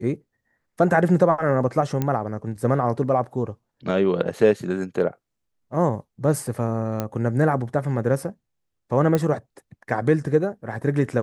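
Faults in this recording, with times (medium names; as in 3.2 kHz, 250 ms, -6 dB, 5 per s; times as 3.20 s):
2.02 s: pop -11 dBFS
7.00 s: pop -11 dBFS
9.15 s: pop -9 dBFS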